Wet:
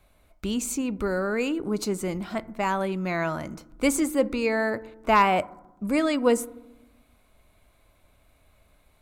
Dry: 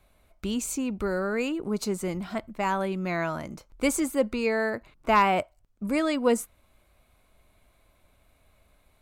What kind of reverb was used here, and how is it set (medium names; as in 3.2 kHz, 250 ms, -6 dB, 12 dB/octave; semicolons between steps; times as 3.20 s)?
FDN reverb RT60 0.96 s, low-frequency decay 1.55×, high-frequency decay 0.25×, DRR 17.5 dB; trim +1.5 dB